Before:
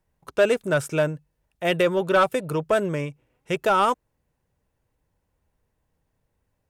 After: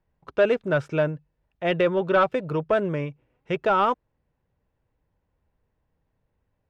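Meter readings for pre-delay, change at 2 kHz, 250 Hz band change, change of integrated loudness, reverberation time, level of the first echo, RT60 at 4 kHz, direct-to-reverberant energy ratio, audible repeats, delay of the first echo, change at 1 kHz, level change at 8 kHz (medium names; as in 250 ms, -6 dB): no reverb, -2.0 dB, -0.5 dB, -1.0 dB, no reverb, no echo, no reverb, no reverb, no echo, no echo, -1.0 dB, under -15 dB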